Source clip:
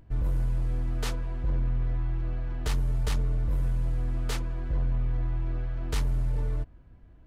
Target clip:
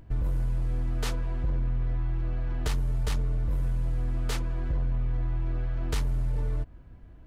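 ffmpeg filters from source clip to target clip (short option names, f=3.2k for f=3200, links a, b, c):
-af "acompressor=threshold=-30dB:ratio=2.5,volume=4dB"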